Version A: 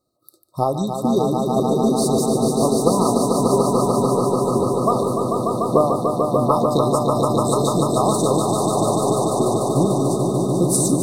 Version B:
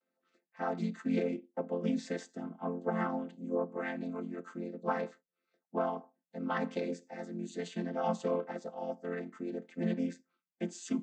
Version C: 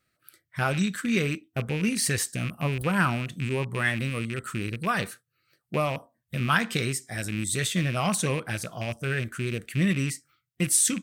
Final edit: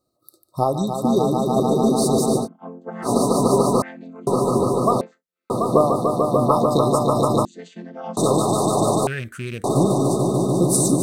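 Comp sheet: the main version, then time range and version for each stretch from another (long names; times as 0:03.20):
A
0:02.43–0:03.07: punch in from B, crossfade 0.10 s
0:03.82–0:04.27: punch in from B
0:05.01–0:05.50: punch in from B
0:07.45–0:08.17: punch in from B
0:09.07–0:09.64: punch in from C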